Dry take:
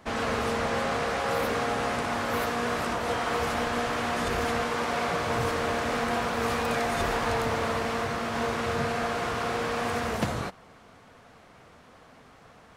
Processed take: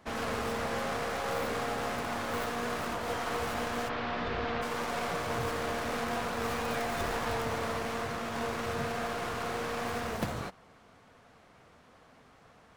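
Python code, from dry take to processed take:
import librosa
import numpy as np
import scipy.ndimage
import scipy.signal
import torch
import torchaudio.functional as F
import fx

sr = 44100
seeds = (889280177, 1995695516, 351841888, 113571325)

y = fx.tracing_dist(x, sr, depth_ms=0.14)
y = fx.lowpass(y, sr, hz=4400.0, slope=24, at=(3.88, 4.61), fade=0.02)
y = F.gain(torch.from_numpy(y), -5.5).numpy()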